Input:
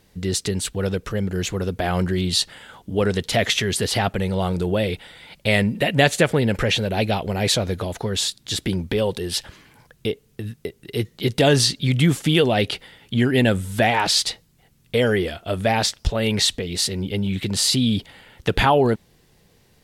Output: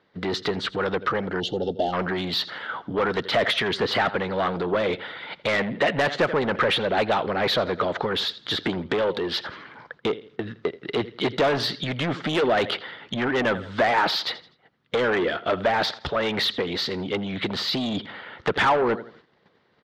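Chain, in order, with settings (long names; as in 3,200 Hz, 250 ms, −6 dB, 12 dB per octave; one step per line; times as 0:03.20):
in parallel at +2.5 dB: downward compressor 5 to 1, threshold −28 dBFS, peak gain reduction 15 dB
on the sum: noise gate −47 dBFS, range −11 dB
loudspeaker in its box 110–4,100 Hz, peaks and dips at 760 Hz −3 dB, 1,300 Hz +5 dB, 2,600 Hz −7 dB
on a send: repeating echo 83 ms, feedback 33%, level −17.5 dB
on the sum: soft clipping −17 dBFS, distortion −9 dB
gain on a spectral selection 0:01.40–0:01.93, 890–2,700 Hz −26 dB
mid-hump overdrive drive 16 dB, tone 1,700 Hz, clips at 0 dBFS
harmonic and percussive parts rebalanced percussive +6 dB
level −8.5 dB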